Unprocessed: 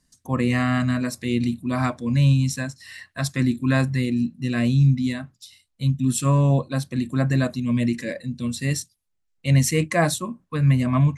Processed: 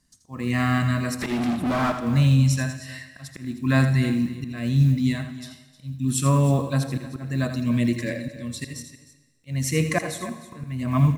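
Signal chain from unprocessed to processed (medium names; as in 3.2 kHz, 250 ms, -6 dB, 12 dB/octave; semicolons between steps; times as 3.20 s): block-companded coder 7-bit; band-stop 510 Hz, Q 12; slow attack 378 ms; 1.20–1.92 s: overdrive pedal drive 38 dB, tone 1.3 kHz, clips at -17 dBFS; multi-tap echo 82/309 ms -10/-16 dB; on a send at -12 dB: reverberation RT60 1.4 s, pre-delay 54 ms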